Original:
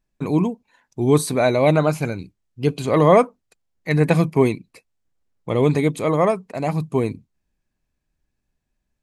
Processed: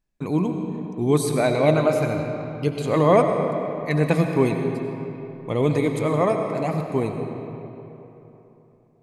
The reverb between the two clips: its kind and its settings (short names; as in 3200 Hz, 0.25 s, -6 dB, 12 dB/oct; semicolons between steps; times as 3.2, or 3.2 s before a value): digital reverb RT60 3.4 s, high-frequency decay 0.6×, pre-delay 50 ms, DRR 4 dB; gain -3.5 dB